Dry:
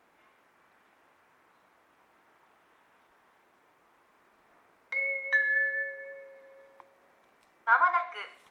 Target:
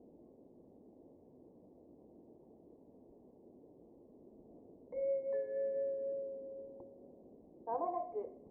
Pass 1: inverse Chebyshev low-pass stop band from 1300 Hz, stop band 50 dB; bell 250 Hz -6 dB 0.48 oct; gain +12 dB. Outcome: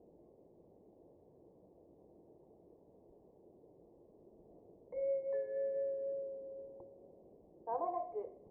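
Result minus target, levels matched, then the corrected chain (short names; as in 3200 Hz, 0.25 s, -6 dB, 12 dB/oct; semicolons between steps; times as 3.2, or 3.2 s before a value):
250 Hz band -3.5 dB
inverse Chebyshev low-pass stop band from 1300 Hz, stop band 50 dB; bell 250 Hz +4.5 dB 0.48 oct; gain +12 dB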